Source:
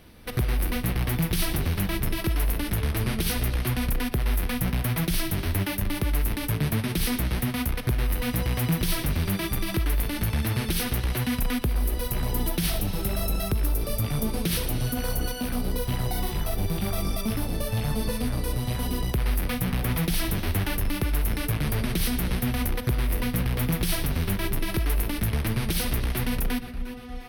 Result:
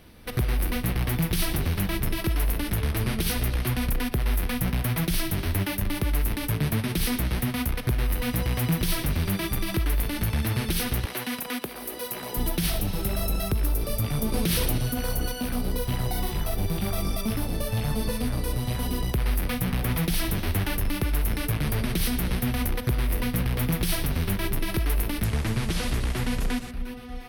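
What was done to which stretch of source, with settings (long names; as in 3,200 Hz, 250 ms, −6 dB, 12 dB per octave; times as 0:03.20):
0:11.05–0:12.37: high-pass filter 310 Hz
0:14.32–0:14.78: envelope flattener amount 100%
0:25.24–0:26.71: linear delta modulator 64 kbit/s, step −36.5 dBFS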